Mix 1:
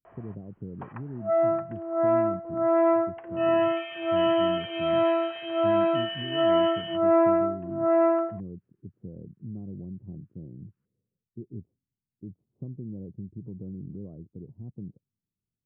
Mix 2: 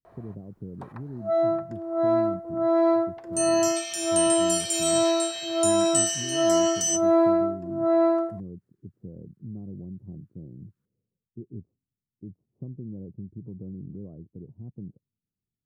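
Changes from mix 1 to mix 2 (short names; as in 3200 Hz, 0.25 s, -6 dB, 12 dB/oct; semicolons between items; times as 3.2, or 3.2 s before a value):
first sound: add tilt shelf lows +4.5 dB, about 650 Hz; master: remove steep low-pass 3100 Hz 96 dB/oct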